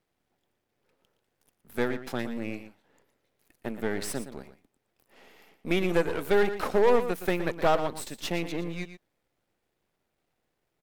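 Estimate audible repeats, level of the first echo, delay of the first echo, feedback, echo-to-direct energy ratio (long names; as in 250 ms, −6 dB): 1, −11.5 dB, 117 ms, repeats not evenly spaced, −11.5 dB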